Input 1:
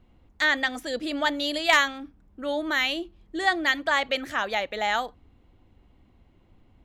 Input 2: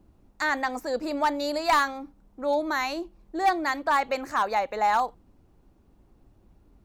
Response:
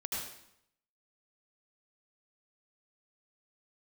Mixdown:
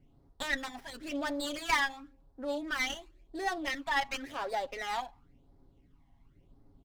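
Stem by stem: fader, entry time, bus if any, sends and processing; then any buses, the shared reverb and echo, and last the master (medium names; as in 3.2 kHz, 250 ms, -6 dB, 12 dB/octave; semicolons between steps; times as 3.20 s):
-6.5 dB, 0.00 s, no send, none
-5.5 dB, 0.00 s, polarity flipped, send -21 dB, peak limiter -26 dBFS, peak gain reduction 10 dB; flange 1.4 Hz, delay 1.5 ms, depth 6.5 ms, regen -62%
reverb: on, RT60 0.75 s, pre-delay 71 ms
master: comb 7.3 ms, depth 59%; phase shifter stages 12, 0.94 Hz, lowest notch 420–2800 Hz; sliding maximum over 5 samples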